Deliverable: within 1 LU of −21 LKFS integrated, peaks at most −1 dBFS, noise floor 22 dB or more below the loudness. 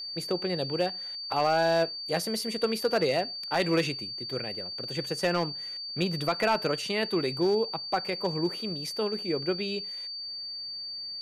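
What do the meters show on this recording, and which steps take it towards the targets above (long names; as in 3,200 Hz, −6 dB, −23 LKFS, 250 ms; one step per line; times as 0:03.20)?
share of clipped samples 0.4%; peaks flattened at −18.0 dBFS; interfering tone 4,600 Hz; level of the tone −35 dBFS; integrated loudness −29.0 LKFS; sample peak −18.0 dBFS; target loudness −21.0 LKFS
→ clipped peaks rebuilt −18 dBFS
notch filter 4,600 Hz, Q 30
level +8 dB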